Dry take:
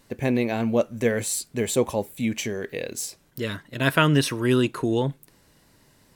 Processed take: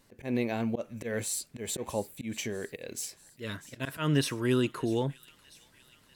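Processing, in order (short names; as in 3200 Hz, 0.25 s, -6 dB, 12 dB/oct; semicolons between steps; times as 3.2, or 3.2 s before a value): auto swell 0.124 s; thin delay 0.644 s, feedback 64%, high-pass 2200 Hz, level -17 dB; gain -6 dB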